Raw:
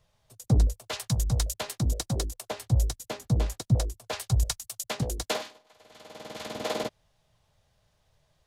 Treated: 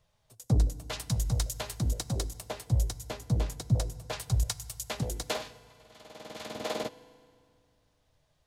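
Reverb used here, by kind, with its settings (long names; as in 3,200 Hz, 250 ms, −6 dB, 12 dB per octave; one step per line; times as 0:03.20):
feedback delay network reverb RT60 2.2 s, low-frequency decay 1.2×, high-frequency decay 0.8×, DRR 16.5 dB
level −3 dB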